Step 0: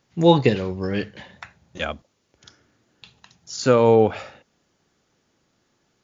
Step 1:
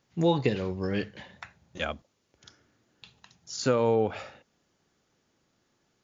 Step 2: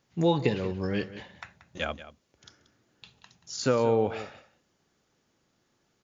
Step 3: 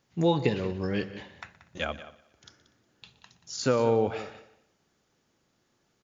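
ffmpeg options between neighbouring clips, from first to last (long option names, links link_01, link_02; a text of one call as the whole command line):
ffmpeg -i in.wav -af "acompressor=threshold=-17dB:ratio=2.5,volume=-4.5dB" out.wav
ffmpeg -i in.wav -af "aecho=1:1:182:0.178" out.wav
ffmpeg -i in.wav -af "aecho=1:1:121|242|363|484:0.106|0.0487|0.0224|0.0103" out.wav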